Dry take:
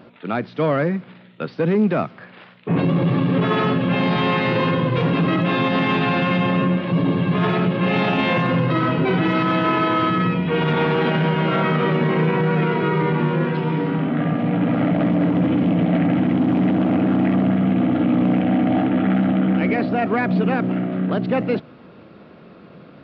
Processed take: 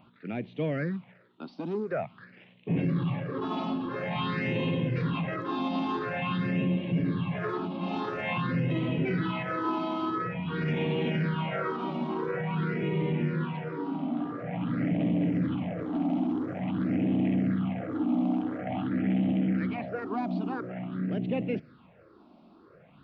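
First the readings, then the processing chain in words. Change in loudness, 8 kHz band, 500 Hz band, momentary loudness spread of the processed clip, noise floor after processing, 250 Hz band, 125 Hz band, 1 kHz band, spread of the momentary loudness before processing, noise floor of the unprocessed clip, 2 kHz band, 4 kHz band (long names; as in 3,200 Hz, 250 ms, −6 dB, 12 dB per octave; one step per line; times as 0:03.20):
−11.0 dB, can't be measured, −12.5 dB, 7 LU, −57 dBFS, −10.5 dB, −10.5 dB, −12.0 dB, 4 LU, −45 dBFS, −12.5 dB, −12.5 dB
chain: all-pass phaser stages 6, 0.48 Hz, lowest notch 120–1,400 Hz
level −8.5 dB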